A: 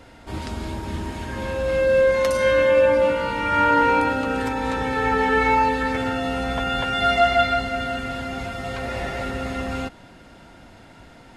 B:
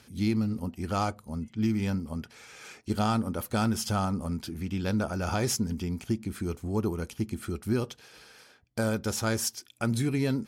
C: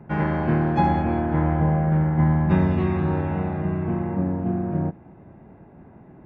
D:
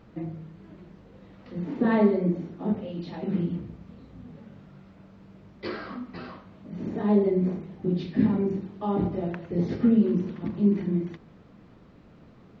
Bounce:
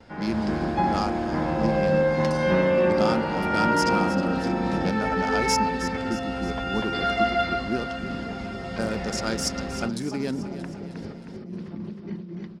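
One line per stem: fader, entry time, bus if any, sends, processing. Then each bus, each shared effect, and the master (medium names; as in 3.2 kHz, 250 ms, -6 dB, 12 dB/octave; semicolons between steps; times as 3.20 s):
-5.5 dB, 0.00 s, no send, no echo send, treble shelf 5.9 kHz -8 dB
+0.5 dB, 0.00 s, no send, echo send -12 dB, local Wiener filter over 15 samples; level-controlled noise filter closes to 2.7 kHz, open at -25 dBFS; high-pass 230 Hz 12 dB/octave
-10.0 dB, 0.00 s, no send, no echo send, high-pass 270 Hz 12 dB/octave; level rider gain up to 10 dB
-8.0 dB, 1.30 s, no send, echo send -5.5 dB, compressor with a negative ratio -32 dBFS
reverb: none
echo: feedback delay 314 ms, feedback 53%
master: gate with hold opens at -46 dBFS; graphic EQ with 31 bands 200 Hz +5 dB, 5 kHz +9 dB, 12.5 kHz -9 dB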